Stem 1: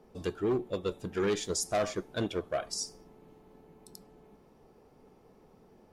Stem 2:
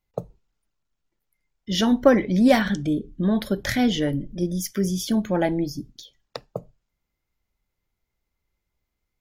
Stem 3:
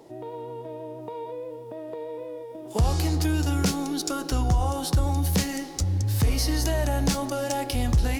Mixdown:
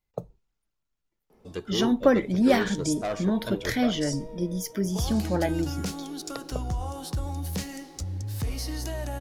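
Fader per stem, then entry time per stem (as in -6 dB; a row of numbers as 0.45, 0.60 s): -1.0, -4.0, -8.0 dB; 1.30, 0.00, 2.20 s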